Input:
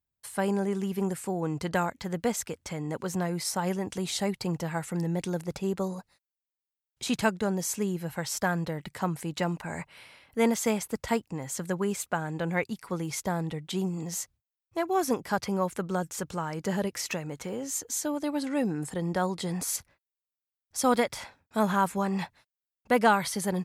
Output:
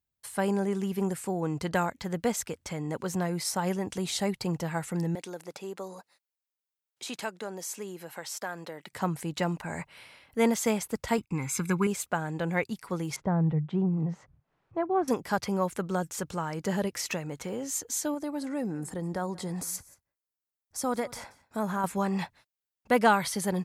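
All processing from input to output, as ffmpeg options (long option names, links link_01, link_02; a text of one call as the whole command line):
ffmpeg -i in.wav -filter_complex "[0:a]asettb=1/sr,asplit=3[link_01][link_02][link_03];[link_01]atrim=end=5.154[link_04];[link_02]atrim=start=5.15:end=8.93,asetpts=PTS-STARTPTS,afade=type=in:duration=0.004:curve=qsin,afade=type=out:start_time=3.776:duration=0.004:curve=qsin,highpass=340,acompressor=threshold=-42dB:ratio=1.5:attack=3.2:release=140:knee=1:detection=peak[link_05];[link_03]atrim=start=8.926[link_06];[link_04][link_05]acrossfade=duration=0.004:curve1=hsin:curve2=qsin[link_07];[link_07][link_06]acrossfade=duration=0.004:curve1=qsin:curve2=hsin,asettb=1/sr,asplit=3[link_08][link_09][link_10];[link_08]atrim=end=11.184[link_11];[link_09]atrim=start=11.18:end=11.87,asetpts=PTS-STARTPTS,afade=type=in:duration=0.004:curve=qsin,afade=type=out:start_time=0.686:duration=0.004:curve=qsin,equalizer=frequency=2200:width_type=o:width=0.36:gain=14,aecho=1:1:0.8:0.97,atrim=end_sample=30429,agate=range=-20dB:threshold=-51dB:ratio=16:release=100:detection=peak[link_12];[link_10]atrim=start=11.866[link_13];[link_11][link_12]acrossfade=duration=0.004:curve1=hsin:curve2=qsin[link_14];[link_14][link_13]acrossfade=duration=0.004:curve1=qsin:curve2=hsin,asettb=1/sr,asplit=3[link_15][link_16][link_17];[link_15]atrim=end=13.164[link_18];[link_16]atrim=start=13.16:end=15.08,asetpts=PTS-STARTPTS,afade=type=in:duration=0.004:curve=qsin,afade=type=out:start_time=1.916:duration=0.004:curve=qsin,lowpass=1300,acompressor=mode=upward:threshold=-49dB:ratio=2.5:attack=3.2:release=140:knee=2.83:detection=peak,equalizer=frequency=150:width_type=o:width=0.43:gain=11[link_19];[link_17]atrim=start=15.076[link_20];[link_18][link_19]acrossfade=duration=0.004:curve1=hsin:curve2=qsin[link_21];[link_21][link_20]acrossfade=duration=0.004:curve1=qsin:curve2=hsin,asettb=1/sr,asplit=3[link_22][link_23][link_24];[link_22]atrim=end=18.144[link_25];[link_23]atrim=start=18.14:end=21.84,asetpts=PTS-STARTPTS,afade=type=in:duration=0.004:curve=qsin,afade=type=out:start_time=3.696:duration=0.004:curve=qsin,acompressor=threshold=-34dB:ratio=1.5:attack=3.2:release=140:knee=1:detection=peak,equalizer=frequency=3100:width=1.3:gain=-7.5,aecho=1:1:180:0.0841,atrim=end_sample=163170[link_26];[link_24]atrim=start=21.836[link_27];[link_25][link_26]acrossfade=duration=0.004:curve1=hsin:curve2=qsin[link_28];[link_28][link_27]acrossfade=duration=0.004:curve1=qsin:curve2=hsin" out.wav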